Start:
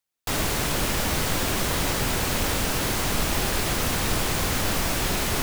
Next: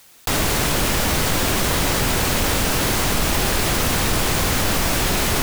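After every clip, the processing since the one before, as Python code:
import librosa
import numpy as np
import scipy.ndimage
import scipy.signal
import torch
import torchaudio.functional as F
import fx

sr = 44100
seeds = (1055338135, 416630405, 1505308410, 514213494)

y = fx.env_flatten(x, sr, amount_pct=50)
y = F.gain(torch.from_numpy(y), 3.5).numpy()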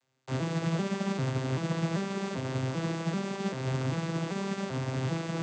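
y = fx.vocoder_arp(x, sr, chord='major triad', root=48, every_ms=391)
y = fx.upward_expand(y, sr, threshold_db=-37.0, expansion=1.5)
y = F.gain(torch.from_numpy(y), -7.0).numpy()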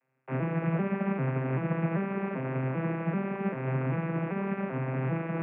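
y = scipy.signal.sosfilt(scipy.signal.cheby1(5, 1.0, [130.0, 2500.0], 'bandpass', fs=sr, output='sos'), x)
y = F.gain(torch.from_numpy(y), 2.0).numpy()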